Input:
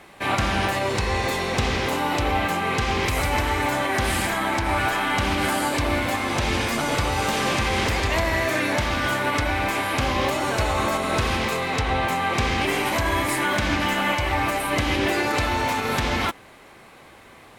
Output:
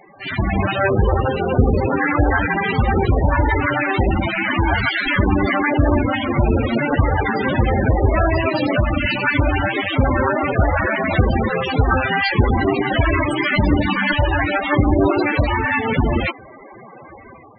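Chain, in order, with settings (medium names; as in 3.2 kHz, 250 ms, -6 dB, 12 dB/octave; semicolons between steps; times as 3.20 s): self-modulated delay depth 0.87 ms; level rider gain up to 7.5 dB; loudest bins only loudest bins 16; trim +5.5 dB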